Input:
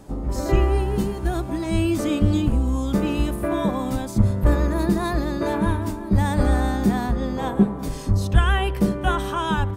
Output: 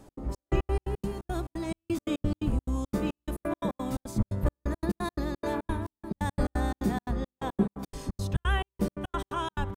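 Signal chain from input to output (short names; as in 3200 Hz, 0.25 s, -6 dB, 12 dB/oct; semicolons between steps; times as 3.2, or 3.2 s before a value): notches 50/100/150/200 Hz; step gate "x.xx..x.x.x.xx.x" 174 bpm -60 dB; gain -6.5 dB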